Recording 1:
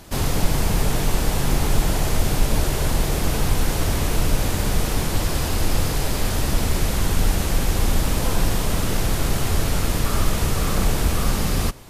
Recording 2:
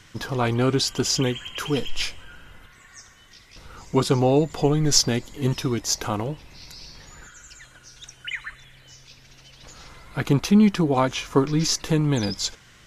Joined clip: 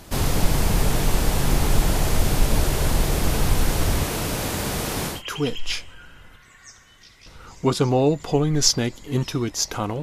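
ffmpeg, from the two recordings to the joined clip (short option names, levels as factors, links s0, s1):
-filter_complex "[0:a]asettb=1/sr,asplit=3[s0][s1][s2];[s0]atrim=end=4.034[s3];[s1]atrim=start=4.03:end=5.23,asetpts=PTS-STARTPTS,afade=t=in:d=0.004:c=qsin,afade=t=out:st=1.196:d=0.004:c=qsin,highpass=f=160:p=1[s4];[s2]atrim=start=5.226[s5];[s3][s4]acrossfade=d=0.004:c1=hsin:c2=qsin[s6];[s6][s5]acrossfade=d=0.004:c1=qsin:c2=hsin,apad=whole_dur=10.02,atrim=end=10.02,atrim=end=5.23,asetpts=PTS-STARTPTS[s7];[1:a]atrim=start=1.37:end=6.32,asetpts=PTS-STARTPTS[s8];[s7][s8]acrossfade=d=0.16:c1=tri:c2=tri"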